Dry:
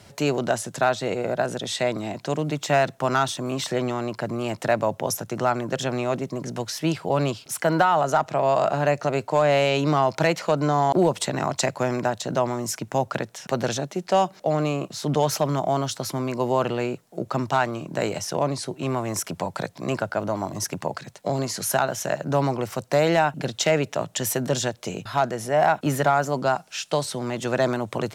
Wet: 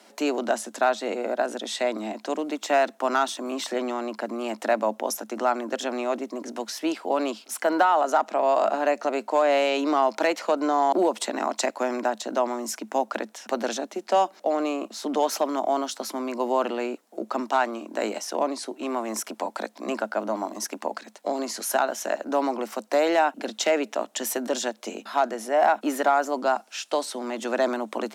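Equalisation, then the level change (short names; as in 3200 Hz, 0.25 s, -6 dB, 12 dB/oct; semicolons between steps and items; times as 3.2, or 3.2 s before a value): rippled Chebyshev high-pass 210 Hz, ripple 3 dB; 0.0 dB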